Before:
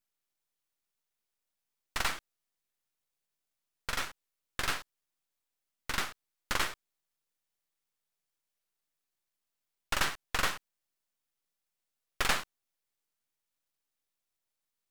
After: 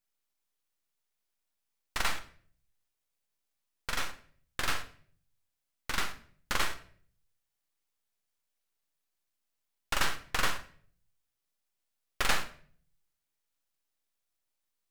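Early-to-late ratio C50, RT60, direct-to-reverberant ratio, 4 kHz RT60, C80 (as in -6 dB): 12.5 dB, 0.50 s, 9.0 dB, 0.40 s, 16.5 dB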